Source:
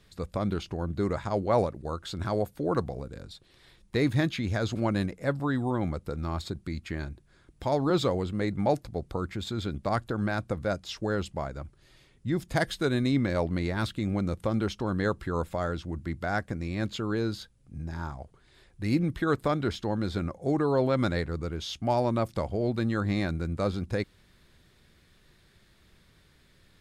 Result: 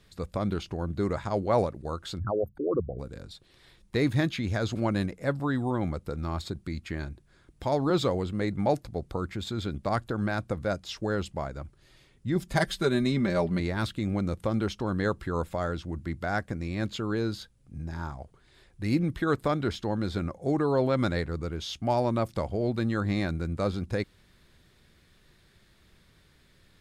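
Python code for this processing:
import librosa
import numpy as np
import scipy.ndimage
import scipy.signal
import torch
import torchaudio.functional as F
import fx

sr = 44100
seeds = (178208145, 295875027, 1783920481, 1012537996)

y = fx.envelope_sharpen(x, sr, power=3.0, at=(2.18, 2.98), fade=0.02)
y = fx.comb(y, sr, ms=5.1, depth=0.65, at=(12.35, 13.6))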